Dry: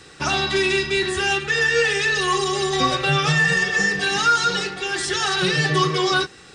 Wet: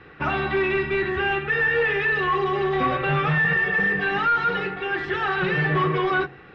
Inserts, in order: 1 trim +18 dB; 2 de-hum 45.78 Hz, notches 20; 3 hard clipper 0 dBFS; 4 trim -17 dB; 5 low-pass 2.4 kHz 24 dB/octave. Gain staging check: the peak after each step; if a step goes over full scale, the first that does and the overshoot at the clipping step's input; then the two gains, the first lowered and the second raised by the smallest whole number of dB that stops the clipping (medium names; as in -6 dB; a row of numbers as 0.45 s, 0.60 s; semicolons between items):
+9.5 dBFS, +9.5 dBFS, 0.0 dBFS, -17.0 dBFS, -15.0 dBFS; step 1, 9.5 dB; step 1 +8 dB, step 4 -7 dB